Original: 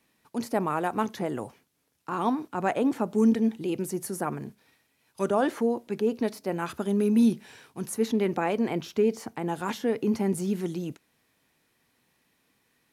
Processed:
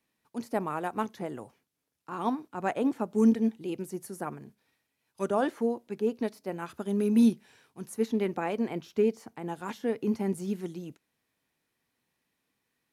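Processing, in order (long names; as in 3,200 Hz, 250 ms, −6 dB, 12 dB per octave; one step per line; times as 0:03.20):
expander for the loud parts 1.5 to 1, over −37 dBFS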